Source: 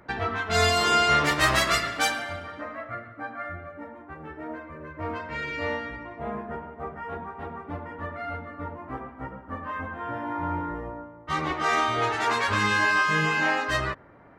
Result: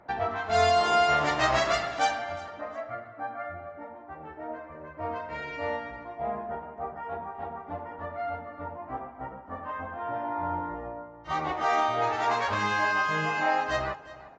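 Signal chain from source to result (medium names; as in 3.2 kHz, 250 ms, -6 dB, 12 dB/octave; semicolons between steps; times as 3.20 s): peaking EQ 730 Hz +12 dB 0.78 oct; feedback delay 357 ms, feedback 26%, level -18 dB; trim -6.5 dB; AAC 32 kbps 16 kHz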